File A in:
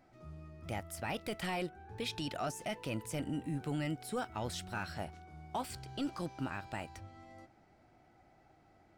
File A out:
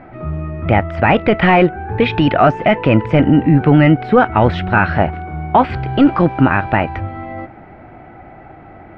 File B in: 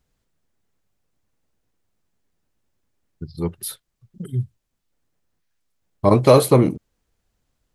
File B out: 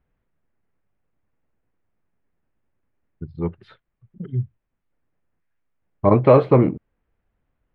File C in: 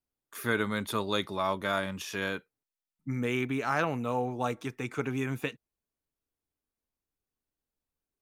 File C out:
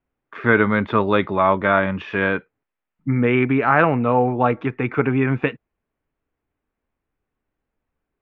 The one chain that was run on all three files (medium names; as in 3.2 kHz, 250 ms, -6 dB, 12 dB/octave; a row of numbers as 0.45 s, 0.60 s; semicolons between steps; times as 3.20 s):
low-pass 2.4 kHz 24 dB/octave; peak normalisation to -1.5 dBFS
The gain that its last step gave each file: +27.0 dB, -0.5 dB, +13.0 dB